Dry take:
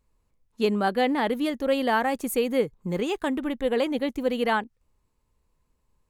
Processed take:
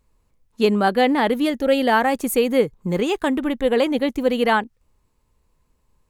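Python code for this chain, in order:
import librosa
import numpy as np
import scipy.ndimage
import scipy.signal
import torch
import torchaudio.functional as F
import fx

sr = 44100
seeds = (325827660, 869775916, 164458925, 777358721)

y = fx.notch(x, sr, hz=1100.0, q=5.6, at=(1.46, 1.92))
y = y * 10.0 ** (6.0 / 20.0)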